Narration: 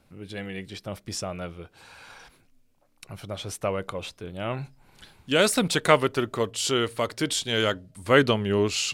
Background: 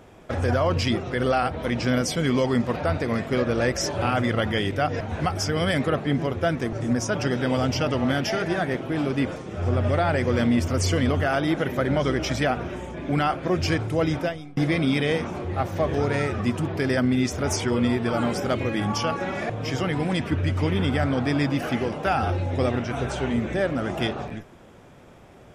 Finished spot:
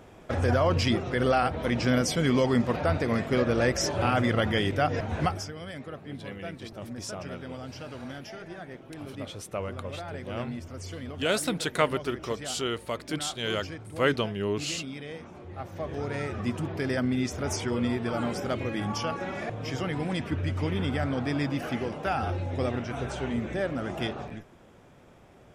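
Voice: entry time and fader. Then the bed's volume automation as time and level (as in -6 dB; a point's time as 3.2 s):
5.90 s, -6.0 dB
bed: 5.27 s -1.5 dB
5.55 s -16.5 dB
15.11 s -16.5 dB
16.49 s -5.5 dB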